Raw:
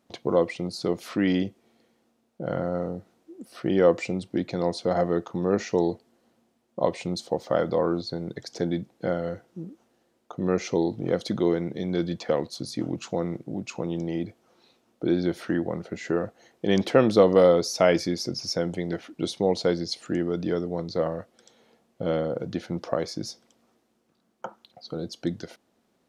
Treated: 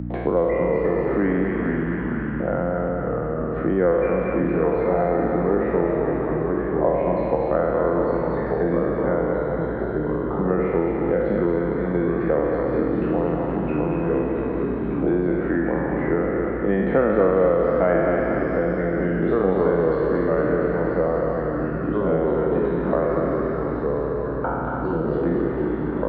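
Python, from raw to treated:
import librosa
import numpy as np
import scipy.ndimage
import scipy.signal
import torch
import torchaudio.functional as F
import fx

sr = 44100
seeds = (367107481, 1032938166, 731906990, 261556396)

p1 = fx.spec_trails(x, sr, decay_s=1.62)
p2 = scipy.signal.sosfilt(scipy.signal.ellip(3, 1.0, 50, [150.0, 1800.0], 'bandpass', fs=sr, output='sos'), p1)
p3 = fx.add_hum(p2, sr, base_hz=60, snr_db=13)
p4 = p3 + fx.echo_thinned(p3, sr, ms=231, feedback_pct=63, hz=630.0, wet_db=-4.0, dry=0)
p5 = fx.echo_pitch(p4, sr, ms=291, semitones=-2, count=3, db_per_echo=-6.0)
y = fx.band_squash(p5, sr, depth_pct=70)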